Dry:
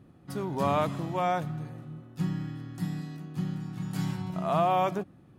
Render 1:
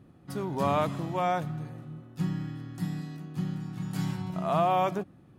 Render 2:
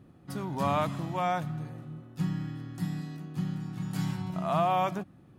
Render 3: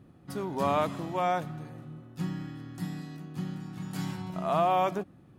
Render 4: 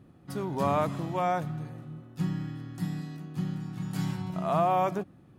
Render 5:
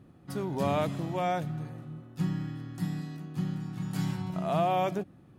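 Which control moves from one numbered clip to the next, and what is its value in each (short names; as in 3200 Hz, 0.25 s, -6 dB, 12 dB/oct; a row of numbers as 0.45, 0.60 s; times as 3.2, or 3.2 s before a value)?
dynamic EQ, frequency: 8700, 430, 130, 3200, 1100 Hz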